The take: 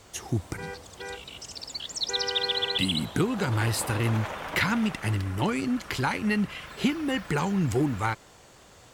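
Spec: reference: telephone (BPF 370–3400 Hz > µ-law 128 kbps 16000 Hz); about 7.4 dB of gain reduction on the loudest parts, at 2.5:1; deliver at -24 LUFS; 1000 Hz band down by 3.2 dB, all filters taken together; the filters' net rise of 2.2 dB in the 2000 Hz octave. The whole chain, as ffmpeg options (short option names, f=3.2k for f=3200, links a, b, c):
-af "equalizer=f=1k:t=o:g=-5.5,equalizer=f=2k:t=o:g=5,acompressor=threshold=-31dB:ratio=2.5,highpass=370,lowpass=3.4k,volume=12.5dB" -ar 16000 -c:a pcm_mulaw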